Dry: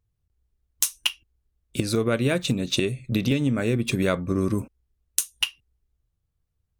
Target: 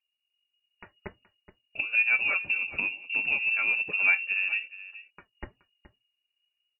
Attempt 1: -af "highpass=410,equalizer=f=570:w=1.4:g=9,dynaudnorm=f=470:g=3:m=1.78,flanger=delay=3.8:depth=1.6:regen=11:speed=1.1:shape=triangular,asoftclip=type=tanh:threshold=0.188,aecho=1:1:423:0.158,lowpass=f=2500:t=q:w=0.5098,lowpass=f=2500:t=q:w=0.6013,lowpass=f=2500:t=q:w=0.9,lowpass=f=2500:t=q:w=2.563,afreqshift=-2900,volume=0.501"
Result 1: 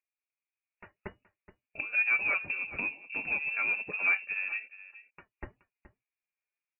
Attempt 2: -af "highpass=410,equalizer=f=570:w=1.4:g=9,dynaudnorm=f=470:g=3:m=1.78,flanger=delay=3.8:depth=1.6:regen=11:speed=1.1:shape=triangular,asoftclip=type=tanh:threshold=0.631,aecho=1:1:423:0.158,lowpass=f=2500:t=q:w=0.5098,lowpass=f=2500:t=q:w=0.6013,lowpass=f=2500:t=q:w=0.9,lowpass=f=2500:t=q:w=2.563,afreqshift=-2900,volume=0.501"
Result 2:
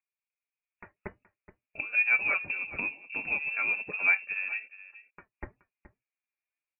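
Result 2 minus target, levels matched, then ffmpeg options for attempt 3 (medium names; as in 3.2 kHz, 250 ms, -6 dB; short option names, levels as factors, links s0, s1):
500 Hz band +4.0 dB
-af "equalizer=f=570:w=1.4:g=9,dynaudnorm=f=470:g=3:m=1.78,flanger=delay=3.8:depth=1.6:regen=11:speed=1.1:shape=triangular,asoftclip=type=tanh:threshold=0.631,aecho=1:1:423:0.158,lowpass=f=2500:t=q:w=0.5098,lowpass=f=2500:t=q:w=0.6013,lowpass=f=2500:t=q:w=0.9,lowpass=f=2500:t=q:w=2.563,afreqshift=-2900,volume=0.501"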